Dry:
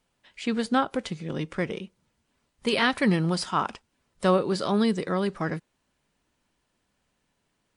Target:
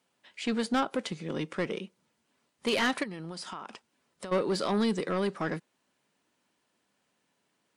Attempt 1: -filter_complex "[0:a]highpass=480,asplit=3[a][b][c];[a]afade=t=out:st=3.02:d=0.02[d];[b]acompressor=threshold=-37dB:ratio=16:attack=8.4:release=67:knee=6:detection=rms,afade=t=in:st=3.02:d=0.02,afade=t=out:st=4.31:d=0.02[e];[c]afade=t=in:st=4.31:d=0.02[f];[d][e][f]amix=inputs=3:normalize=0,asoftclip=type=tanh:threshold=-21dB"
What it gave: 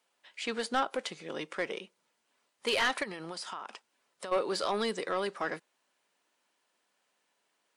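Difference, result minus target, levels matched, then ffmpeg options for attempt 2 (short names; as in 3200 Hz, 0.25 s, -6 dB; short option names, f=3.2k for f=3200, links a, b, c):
250 Hz band -7.5 dB
-filter_complex "[0:a]highpass=190,asplit=3[a][b][c];[a]afade=t=out:st=3.02:d=0.02[d];[b]acompressor=threshold=-37dB:ratio=16:attack=8.4:release=67:knee=6:detection=rms,afade=t=in:st=3.02:d=0.02,afade=t=out:st=4.31:d=0.02[e];[c]afade=t=in:st=4.31:d=0.02[f];[d][e][f]amix=inputs=3:normalize=0,asoftclip=type=tanh:threshold=-21dB"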